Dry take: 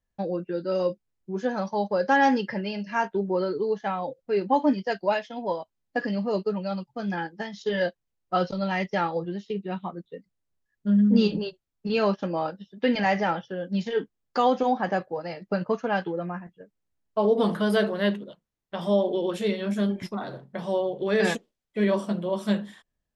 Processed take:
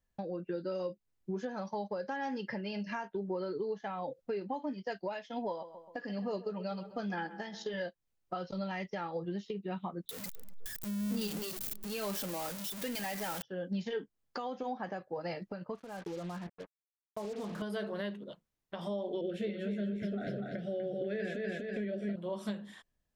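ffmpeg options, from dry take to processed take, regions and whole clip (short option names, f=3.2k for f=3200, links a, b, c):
-filter_complex "[0:a]asettb=1/sr,asplit=3[a][b][c];[a]atrim=end=5.484[d];[b]atrim=start=5.48:end=7.74,asetpts=PTS-STARTPTS,afade=t=in:d=0.004:c=qsin,afade=t=out:st=2.256:d=0.004:c=qsin,equalizer=f=65:w=0.45:g=-6,asplit=2[e][f];[f]adelay=131,lowpass=f=2.5k:p=1,volume=-17.5dB,asplit=2[g][h];[h]adelay=131,lowpass=f=2.5k:p=1,volume=0.53,asplit=2[i][j];[j]adelay=131,lowpass=f=2.5k:p=1,volume=0.53,asplit=2[k][l];[l]adelay=131,lowpass=f=2.5k:p=1,volume=0.53,asplit=2[m][n];[n]adelay=131,lowpass=f=2.5k:p=1,volume=0.53[o];[e][g][i][k][m][o]amix=inputs=6:normalize=0,atrim=end_sample=99666[p];[c]atrim=start=7.736[q];[d][p]acrossfade=d=0.004:c1=hsin:c2=qsin[r];[r][q]acrossfade=d=0.004:c1=qsin:c2=hsin,asettb=1/sr,asplit=3[s][t][u];[s]atrim=end=10.094[v];[t]atrim=start=10.09:end=13.42,asetpts=PTS-STARTPTS,afade=t=in:d=0.004:c=qsin,afade=t=out:st=3.326:d=0.004:c=qsin,aeval=exprs='val(0)+0.5*0.0562*sgn(val(0))':c=same,aemphasis=mode=production:type=75kf,asplit=2[w][x];[x]adelay=245,lowpass=f=1.1k:p=1,volume=-22.5dB,asplit=2[y][z];[z]adelay=245,lowpass=f=1.1k:p=1,volume=0.48,asplit=2[aa][ab];[ab]adelay=245,lowpass=f=1.1k:p=1,volume=0.48[ac];[w][y][aa][ac]amix=inputs=4:normalize=0,atrim=end_sample=146853[ad];[u]atrim=start=13.416[ae];[v][ad]acrossfade=d=0.004:c1=hsin:c2=qsin[af];[af][ae]acrossfade=d=0.004:c1=qsin:c2=hsin,asettb=1/sr,asplit=3[ag][ah][ai];[ag]atrim=end=15.754[aj];[ah]atrim=start=15.75:end=17.62,asetpts=PTS-STARTPTS,afade=t=in:d=0.004:c=qsin,afade=t=out:st=1.866:d=0.004:c=qsin,highshelf=f=2.4k:g=-11,acompressor=threshold=-36dB:ratio=12:attack=3.2:release=140:knee=1:detection=peak,acrusher=bits=7:mix=0:aa=0.5[ak];[ai]atrim=start=17.616[al];[aj][ak]acrossfade=d=0.004:c1=hsin:c2=qsin[am];[am][al]acrossfade=d=0.004:c1=qsin:c2=hsin,asettb=1/sr,asplit=3[an][ao][ap];[an]atrim=end=19.214[aq];[ao]atrim=start=19.21:end=22.16,asetpts=PTS-STARTPTS,afade=t=in:d=0.004:c=qsin,afade=t=out:st=2.946:d=0.004:c=qsin,asuperstop=centerf=1000:order=8:qfactor=1.4,bass=f=250:g=2,treble=f=4k:g=-14,aecho=1:1:245|490|735|980:0.473|0.151|0.0485|0.0155,atrim=end_sample=130095[ar];[ap]atrim=start=22.156[as];[aq][ar]acrossfade=d=0.004:c1=hsin:c2=qsin[at];[at][as]acrossfade=d=0.004:c1=qsin:c2=hsin,acompressor=threshold=-33dB:ratio=6,alimiter=level_in=3dB:limit=-24dB:level=0:latency=1:release=308,volume=-3dB"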